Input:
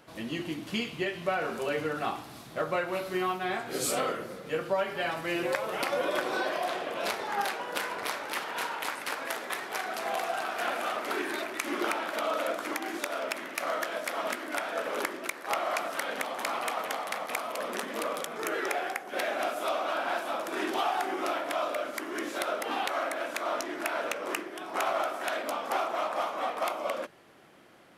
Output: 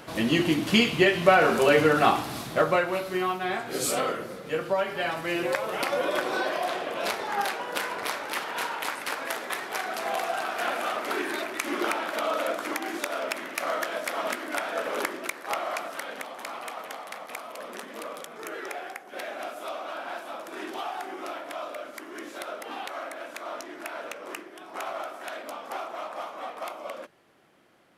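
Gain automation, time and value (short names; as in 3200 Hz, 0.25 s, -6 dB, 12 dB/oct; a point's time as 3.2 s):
2.42 s +11.5 dB
3.04 s +2.5 dB
15.19 s +2.5 dB
16.38 s -5 dB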